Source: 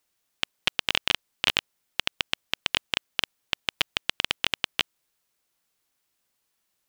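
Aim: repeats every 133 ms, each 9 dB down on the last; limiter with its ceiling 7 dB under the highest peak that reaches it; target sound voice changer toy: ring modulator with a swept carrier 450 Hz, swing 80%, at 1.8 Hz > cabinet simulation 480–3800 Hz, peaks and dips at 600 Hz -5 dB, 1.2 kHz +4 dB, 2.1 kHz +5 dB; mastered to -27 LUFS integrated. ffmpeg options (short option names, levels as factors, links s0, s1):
-af "alimiter=limit=0.335:level=0:latency=1,aecho=1:1:133|266|399|532:0.355|0.124|0.0435|0.0152,aeval=exprs='val(0)*sin(2*PI*450*n/s+450*0.8/1.8*sin(2*PI*1.8*n/s))':c=same,highpass=480,equalizer=f=600:t=q:w=4:g=-5,equalizer=f=1200:t=q:w=4:g=4,equalizer=f=2100:t=q:w=4:g=5,lowpass=f=3800:w=0.5412,lowpass=f=3800:w=1.3066,volume=2.99"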